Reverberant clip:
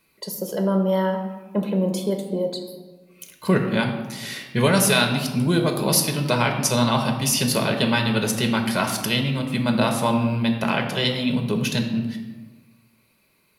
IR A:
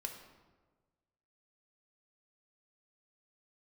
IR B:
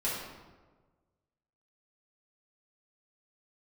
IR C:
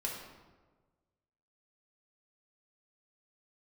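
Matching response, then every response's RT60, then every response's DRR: A; 1.4, 1.4, 1.4 seconds; 3.0, −8.0, −2.5 decibels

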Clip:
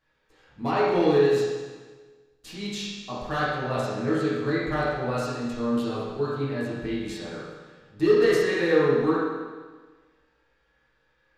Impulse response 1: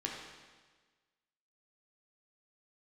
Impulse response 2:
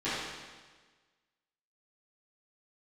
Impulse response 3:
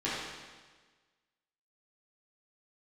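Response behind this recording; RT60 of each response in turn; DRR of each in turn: 3; 1.4, 1.4, 1.4 seconds; −2.0, −15.5, −10.5 decibels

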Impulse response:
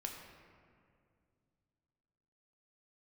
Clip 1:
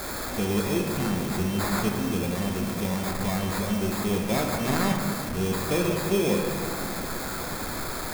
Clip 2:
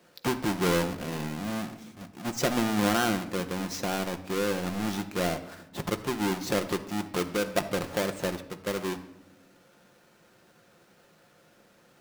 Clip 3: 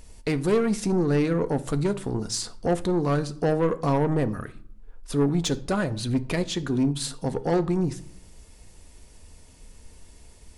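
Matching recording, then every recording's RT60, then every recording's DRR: 1; 2.3, 0.85, 0.60 seconds; 1.0, 6.5, 10.5 decibels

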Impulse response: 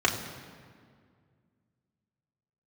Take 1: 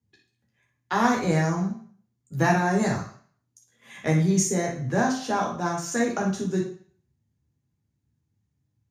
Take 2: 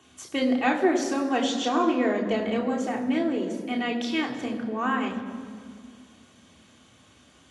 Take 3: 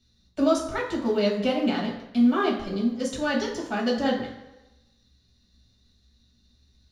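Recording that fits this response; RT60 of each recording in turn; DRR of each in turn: 2; 0.50, 2.0, 1.0 seconds; −1.5, −2.0, −3.0 decibels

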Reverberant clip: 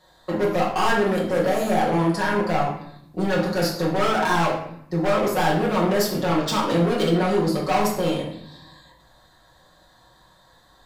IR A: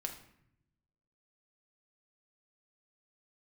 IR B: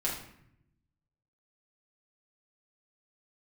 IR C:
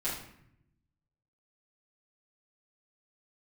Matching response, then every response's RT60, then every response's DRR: B; 0.70, 0.70, 0.70 seconds; 3.0, −5.5, −11.0 decibels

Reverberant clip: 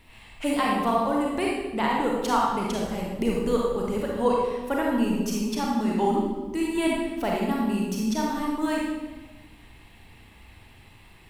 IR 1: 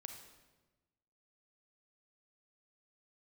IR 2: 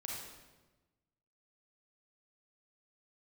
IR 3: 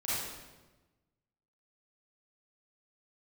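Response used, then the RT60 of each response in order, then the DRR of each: 2; 1.2, 1.2, 1.2 seconds; 4.5, −3.0, −11.0 decibels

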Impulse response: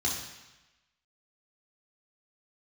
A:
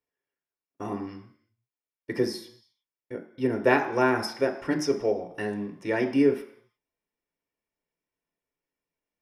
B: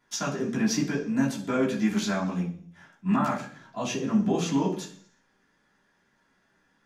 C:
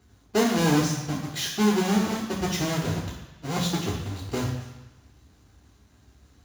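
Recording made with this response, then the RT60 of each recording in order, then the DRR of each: C; non-exponential decay, 0.50 s, 1.0 s; 4.5, −6.0, −4.0 decibels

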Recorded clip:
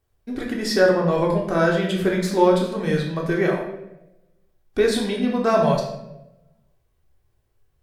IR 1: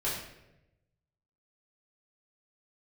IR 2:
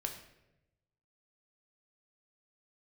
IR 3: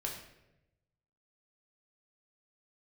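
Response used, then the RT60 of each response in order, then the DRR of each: 3; 0.90, 0.95, 0.90 seconds; −10.0, 2.5, −1.5 decibels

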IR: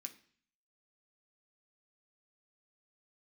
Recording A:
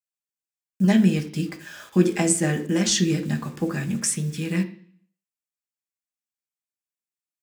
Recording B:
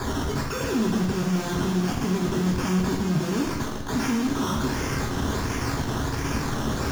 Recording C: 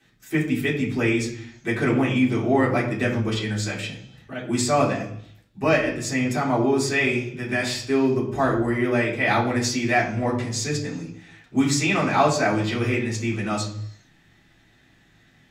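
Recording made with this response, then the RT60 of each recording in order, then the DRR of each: A; 0.50, 1.1, 0.70 seconds; 3.0, −2.5, −8.0 decibels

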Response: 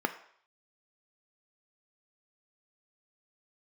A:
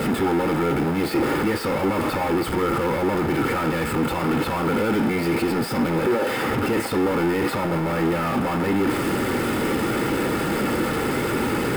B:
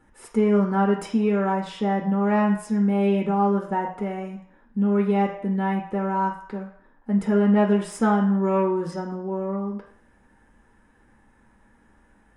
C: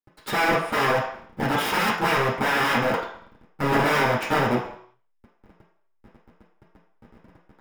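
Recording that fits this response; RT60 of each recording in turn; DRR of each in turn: A; 0.60, 0.60, 0.60 seconds; 7.5, 1.0, −5.5 decibels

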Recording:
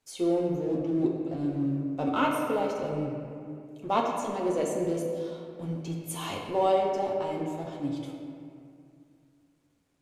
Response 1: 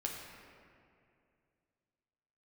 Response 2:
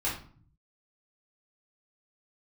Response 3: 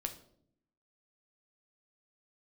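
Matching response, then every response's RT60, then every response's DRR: 1; 2.4, 0.45, 0.65 seconds; −1.5, −9.0, 5.0 decibels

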